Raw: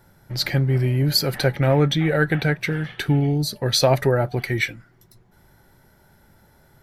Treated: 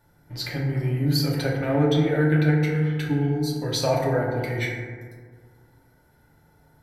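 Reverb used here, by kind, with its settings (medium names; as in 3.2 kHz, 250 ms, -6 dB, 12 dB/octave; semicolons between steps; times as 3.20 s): FDN reverb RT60 1.8 s, low-frequency decay 1.1×, high-frequency decay 0.3×, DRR -3.5 dB; trim -9.5 dB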